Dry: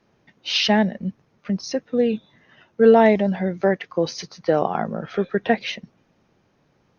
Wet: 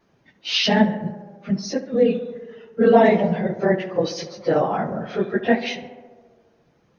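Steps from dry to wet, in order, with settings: phase randomisation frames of 50 ms; on a send: tape echo 69 ms, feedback 82%, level -12 dB, low-pass 2.1 kHz

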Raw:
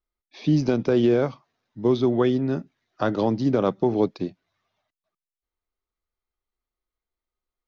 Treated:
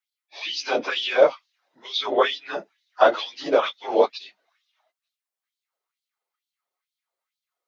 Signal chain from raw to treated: phase randomisation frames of 50 ms; dynamic bell 2.8 kHz, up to +7 dB, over -48 dBFS, Q 1.2; LFO high-pass sine 2.2 Hz 520–3900 Hz; frequency shift +20 Hz; trim +3.5 dB

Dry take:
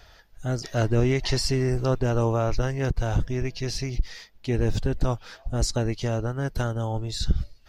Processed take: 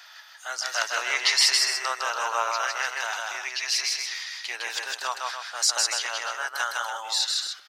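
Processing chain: high-pass 1 kHz 24 dB/octave; on a send: loudspeakers at several distances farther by 54 m -2 dB, 98 m -8 dB; on the sum: trim +8 dB

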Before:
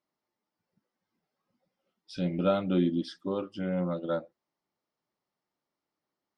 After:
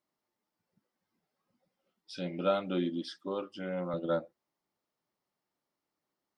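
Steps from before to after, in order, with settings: 2.14–3.94 s: high-pass 470 Hz 6 dB/octave

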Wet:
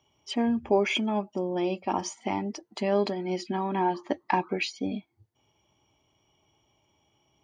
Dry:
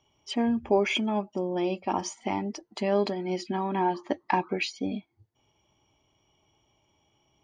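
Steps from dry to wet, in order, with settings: high-pass 52 Hz

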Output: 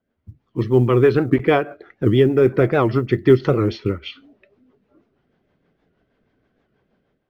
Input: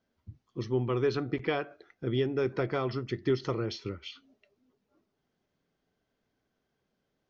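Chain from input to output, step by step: low-pass 2.5 kHz 12 dB/octave; level rider gain up to 11 dB; rotary cabinet horn 6.3 Hz; short-mantissa float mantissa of 6-bit; warped record 78 rpm, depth 160 cents; trim +5 dB

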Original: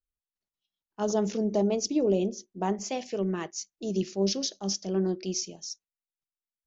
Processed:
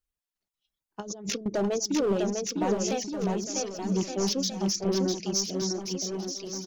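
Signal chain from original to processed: reverb removal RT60 0.86 s; in parallel at 0 dB: peak limiter -27 dBFS, peak gain reduction 11.5 dB; 1.00–1.46 s: on the sum: compressor with a negative ratio -32 dBFS, ratio -0.5; hard clipper -21 dBFS, distortion -13 dB; 3.08–3.92 s: brick-wall FIR band-stop 220–4200 Hz; on a send: bouncing-ball echo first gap 650 ms, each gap 0.8×, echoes 5; 4.84–5.62 s: on the sum: three bands expanded up and down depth 40%; trim -1.5 dB

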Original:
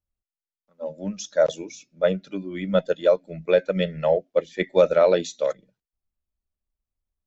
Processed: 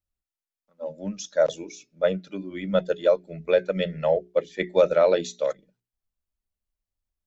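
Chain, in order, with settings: hum notches 60/120/180/240/300/360/420 Hz; trim -1.5 dB

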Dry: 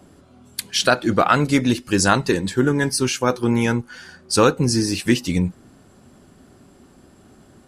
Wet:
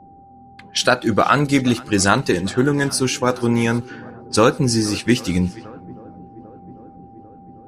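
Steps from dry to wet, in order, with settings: shuffle delay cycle 795 ms, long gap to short 1.5:1, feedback 67%, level -23 dB; level-controlled noise filter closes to 390 Hz, open at -17.5 dBFS; whistle 790 Hz -45 dBFS; trim +1 dB

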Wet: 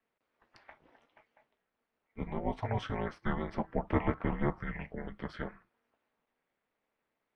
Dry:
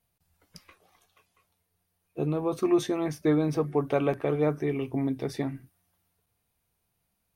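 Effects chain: Butterworth band-pass 1.3 kHz, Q 0.67; ring modulator 110 Hz; frequency shift -360 Hz; trim +5.5 dB

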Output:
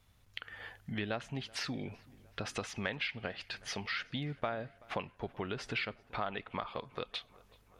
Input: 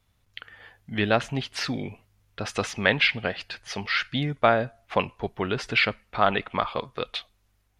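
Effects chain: compression 3:1, threshold -41 dBFS, peak gain reduction 19.5 dB; on a send: filtered feedback delay 380 ms, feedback 68%, low-pass 3.4 kHz, level -24 dB; on the sum: trim +1.5 dB

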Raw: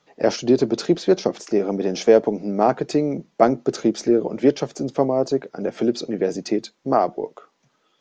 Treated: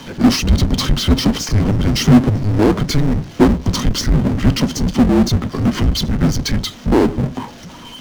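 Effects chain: frequency shift -310 Hz; small resonant body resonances 240/3100 Hz, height 11 dB, ringing for 40 ms; power-law waveshaper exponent 0.5; trim -4.5 dB

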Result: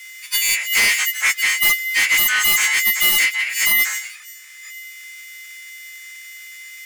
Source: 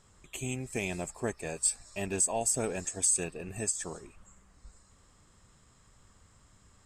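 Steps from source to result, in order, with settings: partials quantised in pitch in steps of 6 st; full-wave rectifier; resonant high-pass 2 kHz, resonance Q 6.4; in parallel at -7.5 dB: sine folder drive 17 dB, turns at -6.5 dBFS

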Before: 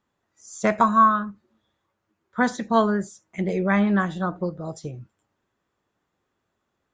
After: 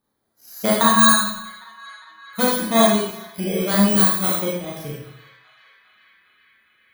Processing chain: bit-reversed sample order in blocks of 16 samples; 1.00–2.94 s: comb 5.9 ms, depth 57%; 3.87–4.31 s: treble shelf 7.7 kHz +10.5 dB; band-passed feedback delay 403 ms, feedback 82%, band-pass 2.1 kHz, level -17.5 dB; reverb removal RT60 0.91 s; Schroeder reverb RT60 0.73 s, combs from 28 ms, DRR -4.5 dB; trim -1.5 dB

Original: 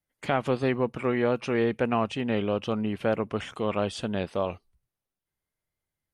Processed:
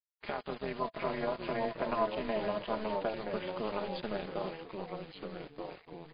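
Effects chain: high-pass 390 Hz 6 dB/octave; treble shelf 3.4 kHz -7.5 dB; comb 4.9 ms, depth 57%; compression 3:1, threshold -31 dBFS, peak gain reduction 8 dB; bit crusher 7-bit; AM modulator 220 Hz, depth 90%; 0.80–3.09 s: small resonant body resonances 660/1000 Hz, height 14 dB, ringing for 60 ms; ever faster or slower copies 694 ms, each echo -2 st, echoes 3, each echo -6 dB; MP3 24 kbps 11.025 kHz

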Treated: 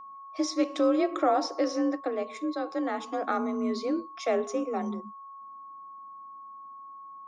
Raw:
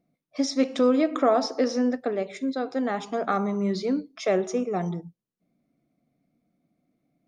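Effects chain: frequency shift +39 Hz; whistle 1.1 kHz -39 dBFS; trim -3.5 dB

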